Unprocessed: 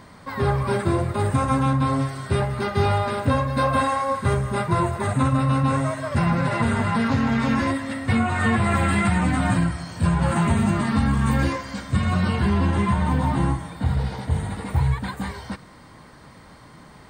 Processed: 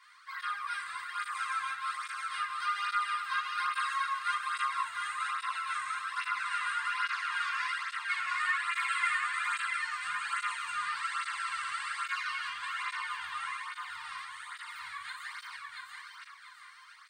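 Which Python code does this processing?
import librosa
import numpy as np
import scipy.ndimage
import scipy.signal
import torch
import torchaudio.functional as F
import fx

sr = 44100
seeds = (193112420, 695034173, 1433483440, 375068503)

y = scipy.signal.sosfilt(scipy.signal.ellip(4, 1.0, 50, 1200.0, 'highpass', fs=sr, output='sos'), x)
y = fx.high_shelf(y, sr, hz=7900.0, db=-8.0)
y = fx.echo_feedback(y, sr, ms=685, feedback_pct=39, wet_db=-3.5)
y = fx.room_shoebox(y, sr, seeds[0], volume_m3=410.0, walls='furnished', distance_m=3.2)
y = fx.spec_freeze(y, sr, seeds[1], at_s=11.03, hold_s=1.03)
y = fx.flanger_cancel(y, sr, hz=1.2, depth_ms=2.4)
y = y * 10.0 ** (-5.5 / 20.0)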